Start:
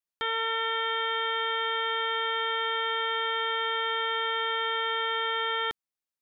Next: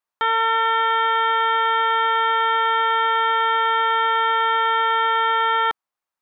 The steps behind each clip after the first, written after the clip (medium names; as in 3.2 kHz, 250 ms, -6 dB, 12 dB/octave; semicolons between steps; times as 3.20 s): peaking EQ 1 kHz +14.5 dB 1.9 oct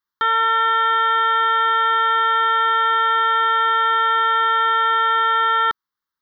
static phaser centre 2.5 kHz, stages 6; trim +4 dB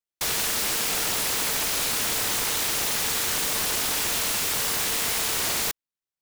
delay time shaken by noise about 3.2 kHz, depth 0.36 ms; trim -8.5 dB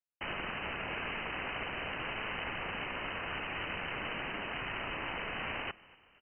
frequency-shifting echo 237 ms, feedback 53%, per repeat -100 Hz, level -22 dB; frequency inversion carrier 3 kHz; trim -6.5 dB